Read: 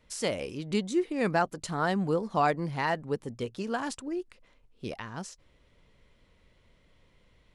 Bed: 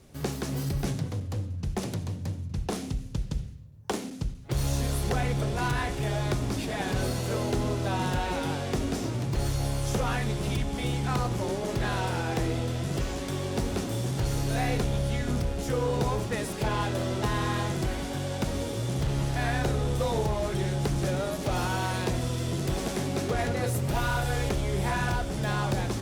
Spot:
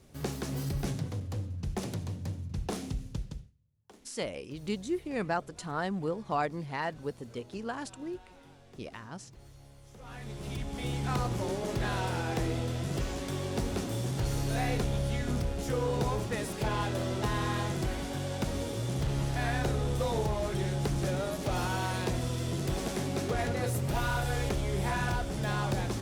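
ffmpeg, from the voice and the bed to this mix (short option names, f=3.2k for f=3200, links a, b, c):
-filter_complex "[0:a]adelay=3950,volume=-5dB[a];[1:a]volume=19dB,afade=t=out:st=3.09:d=0.43:silence=0.0794328,afade=t=in:st=9.96:d=1.17:silence=0.0749894[b];[a][b]amix=inputs=2:normalize=0"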